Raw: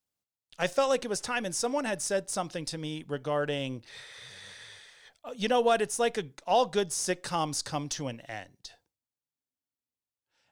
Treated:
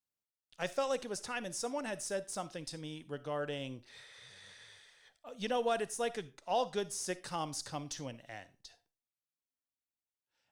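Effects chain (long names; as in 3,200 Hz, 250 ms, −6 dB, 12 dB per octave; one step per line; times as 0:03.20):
0:04.06–0:04.68: low-pass filter 12,000 Hz 12 dB per octave
on a send: high-shelf EQ 4,900 Hz +6.5 dB + convolution reverb RT60 0.30 s, pre-delay 15 ms, DRR 17 dB
on the sum: level −8 dB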